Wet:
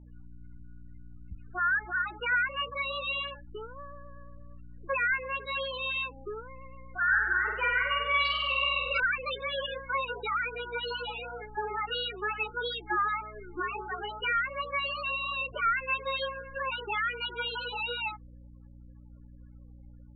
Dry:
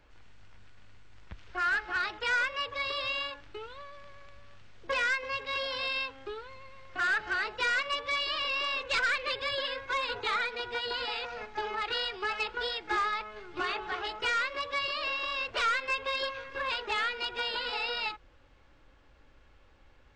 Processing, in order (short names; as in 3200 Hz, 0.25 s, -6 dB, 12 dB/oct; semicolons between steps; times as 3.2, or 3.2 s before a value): loudest bins only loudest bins 8; hum 60 Hz, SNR 17 dB; 7.03–9 flutter echo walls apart 8.3 m, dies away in 0.92 s; gain +2 dB